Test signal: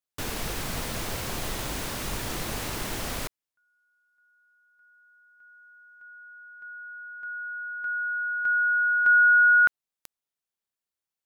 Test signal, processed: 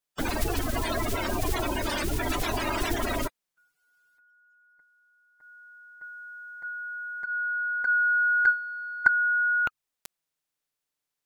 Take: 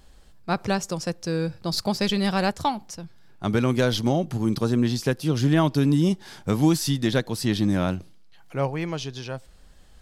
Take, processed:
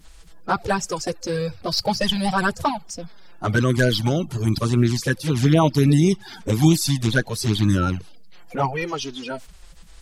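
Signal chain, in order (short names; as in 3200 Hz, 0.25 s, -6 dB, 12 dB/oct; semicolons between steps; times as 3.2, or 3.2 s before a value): bin magnitudes rounded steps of 30 dB; dynamic EQ 300 Hz, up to -4 dB, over -35 dBFS, Q 0.8; envelope flanger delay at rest 6.8 ms, full sweep at -17.5 dBFS; gain +8 dB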